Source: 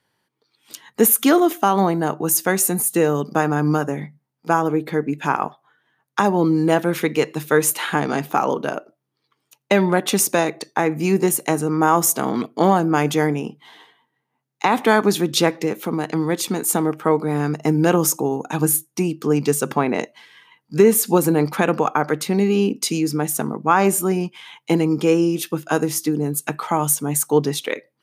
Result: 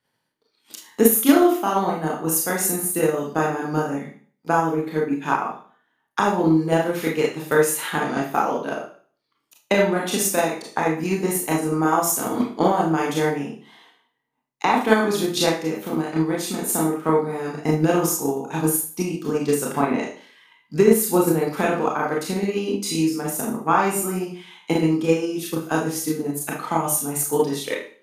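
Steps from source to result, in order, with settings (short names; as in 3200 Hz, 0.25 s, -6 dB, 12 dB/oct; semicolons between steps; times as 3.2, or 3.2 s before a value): Schroeder reverb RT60 0.45 s, combs from 25 ms, DRR -3.5 dB; transient shaper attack +6 dB, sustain -1 dB; gain -8.5 dB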